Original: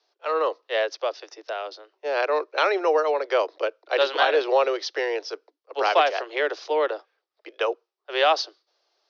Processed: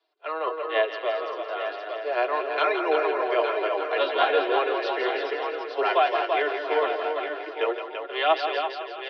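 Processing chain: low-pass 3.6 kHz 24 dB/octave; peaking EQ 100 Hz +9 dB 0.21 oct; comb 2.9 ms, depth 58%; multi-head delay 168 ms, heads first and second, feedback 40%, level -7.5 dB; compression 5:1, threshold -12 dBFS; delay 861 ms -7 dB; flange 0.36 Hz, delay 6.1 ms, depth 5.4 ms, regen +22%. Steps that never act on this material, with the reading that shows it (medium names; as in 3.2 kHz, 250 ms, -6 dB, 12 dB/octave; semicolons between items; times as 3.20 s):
peaking EQ 100 Hz: input has nothing below 270 Hz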